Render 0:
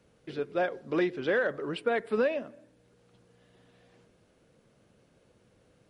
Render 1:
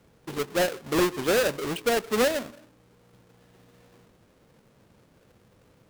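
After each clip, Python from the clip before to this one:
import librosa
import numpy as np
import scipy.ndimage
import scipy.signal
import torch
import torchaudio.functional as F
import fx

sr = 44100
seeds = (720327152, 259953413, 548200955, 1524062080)

y = fx.halfwave_hold(x, sr)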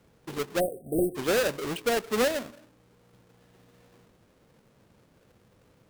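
y = fx.spec_erase(x, sr, start_s=0.6, length_s=0.56, low_hz=770.0, high_hz=8000.0)
y = y * librosa.db_to_amplitude(-2.0)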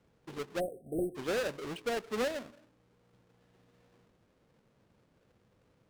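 y = fx.high_shelf(x, sr, hz=9500.0, db=-11.5)
y = y * librosa.db_to_amplitude(-7.5)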